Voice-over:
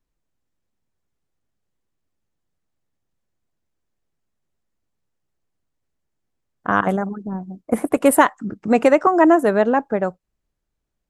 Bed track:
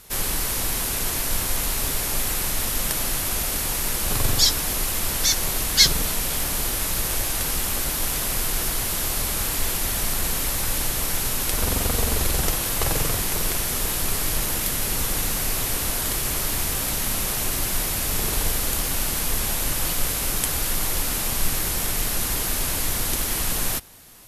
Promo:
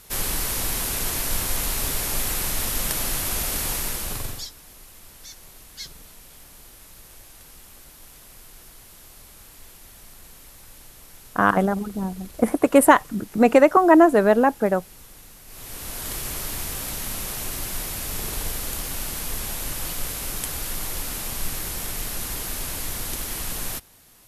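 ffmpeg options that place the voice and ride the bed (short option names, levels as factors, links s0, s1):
-filter_complex "[0:a]adelay=4700,volume=1[s0];[1:a]volume=5.96,afade=t=out:st=3.71:d=0.78:silence=0.0891251,afade=t=in:st=15.46:d=0.69:silence=0.149624[s1];[s0][s1]amix=inputs=2:normalize=0"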